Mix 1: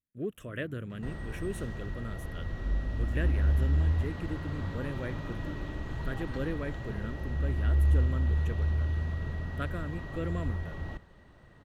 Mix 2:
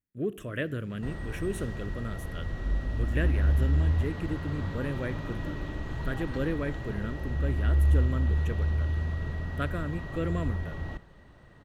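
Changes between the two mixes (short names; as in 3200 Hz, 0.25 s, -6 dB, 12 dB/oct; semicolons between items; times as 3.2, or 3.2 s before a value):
first sound: remove air absorption 470 m; reverb: on, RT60 0.80 s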